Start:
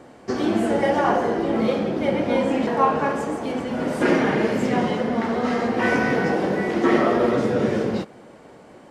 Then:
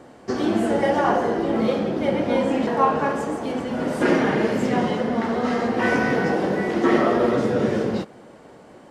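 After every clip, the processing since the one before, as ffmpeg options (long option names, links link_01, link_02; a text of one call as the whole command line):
ffmpeg -i in.wav -af "equalizer=frequency=2300:width_type=o:width=0.27:gain=-2.5" out.wav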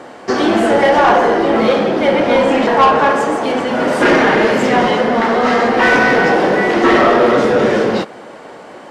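ffmpeg -i in.wav -filter_complex "[0:a]asplit=2[link_01][link_02];[link_02]highpass=frequency=720:poles=1,volume=18dB,asoftclip=type=tanh:threshold=-4.5dB[link_03];[link_01][link_03]amix=inputs=2:normalize=0,lowpass=frequency=4000:poles=1,volume=-6dB,volume=3.5dB" out.wav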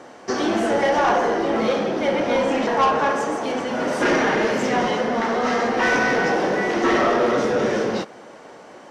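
ffmpeg -i in.wav -af "equalizer=frequency=5900:width_type=o:width=0.33:gain=8.5,volume=-8dB" out.wav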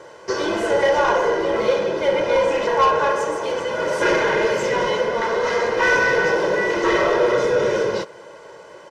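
ffmpeg -i in.wav -af "aecho=1:1:2:0.85,volume=-1.5dB" out.wav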